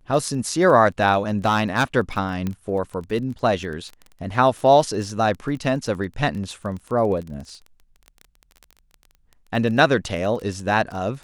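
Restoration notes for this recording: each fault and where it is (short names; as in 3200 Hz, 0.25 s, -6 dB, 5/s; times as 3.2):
crackle 17/s -29 dBFS
1.45–1.84 clipped -12.5 dBFS
2.47 pop -14 dBFS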